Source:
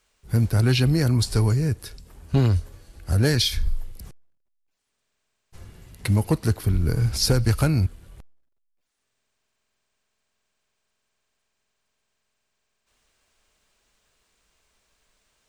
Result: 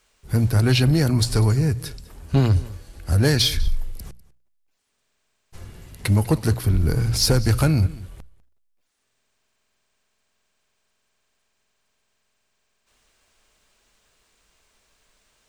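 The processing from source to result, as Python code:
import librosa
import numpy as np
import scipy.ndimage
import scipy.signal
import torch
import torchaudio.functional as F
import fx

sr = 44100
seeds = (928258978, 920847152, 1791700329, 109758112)

p1 = fx.hum_notches(x, sr, base_hz=60, count=3)
p2 = p1 + 10.0 ** (-21.0 / 20.0) * np.pad(p1, (int(198 * sr / 1000.0), 0))[:len(p1)]
p3 = 10.0 ** (-22.5 / 20.0) * np.tanh(p2 / 10.0 ** (-22.5 / 20.0))
y = p2 + (p3 * librosa.db_to_amplitude(-3.5))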